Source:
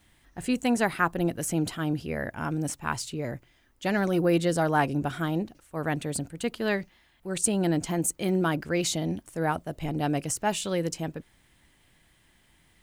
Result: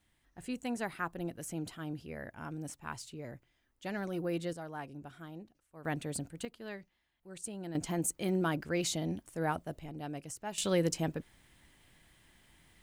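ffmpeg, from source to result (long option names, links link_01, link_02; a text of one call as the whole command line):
ffmpeg -i in.wav -af "asetnsamples=nb_out_samples=441:pad=0,asendcmd='4.53 volume volume -19dB;5.85 volume volume -7dB;6.45 volume volume -17dB;7.75 volume volume -6dB;9.8 volume volume -14dB;10.58 volume volume -1dB',volume=-12dB" out.wav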